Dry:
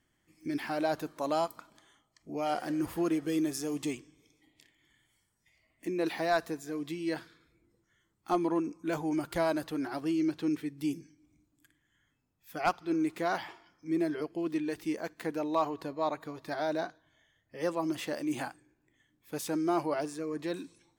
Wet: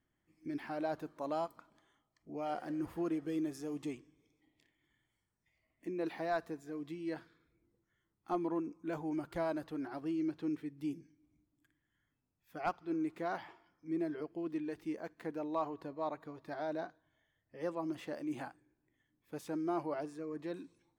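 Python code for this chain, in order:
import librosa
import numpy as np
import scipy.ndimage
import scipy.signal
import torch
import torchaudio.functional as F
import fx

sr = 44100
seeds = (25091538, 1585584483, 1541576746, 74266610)

y = fx.high_shelf(x, sr, hz=2900.0, db=-11.0)
y = F.gain(torch.from_numpy(y), -6.0).numpy()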